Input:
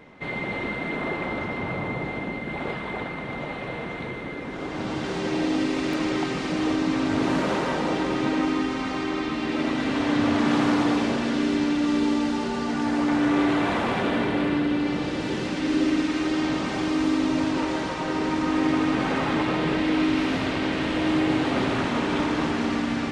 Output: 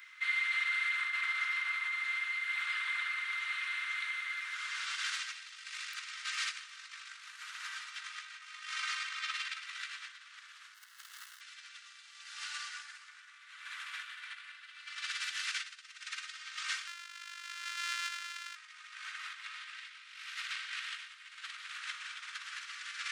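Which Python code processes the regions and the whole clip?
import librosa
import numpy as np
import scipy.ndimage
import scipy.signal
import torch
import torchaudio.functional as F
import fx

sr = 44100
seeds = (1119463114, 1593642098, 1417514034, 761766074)

y = fx.chain(x, sr, fx.median_filter(points=41),
    fx.notch(hz=2400.0, q=5.3), at=(10.74, 11.41))
y = fx.chain(y, sr, fx.sample_sort(block=128),
    fx.air_absorb(metres=110.0), at=(16.87, 18.56))
y = fx.over_compress(y, sr, threshold_db=-29.0, ratio=-0.5)
y = scipy.signal.sosfilt(scipy.signal.butter(8, 1300.0, 'highpass', fs=sr, output='sos'), y)
y = fx.high_shelf(y, sr, hz=5900.0, db=10.0)
y = y * 10.0 ** (-4.5 / 20.0)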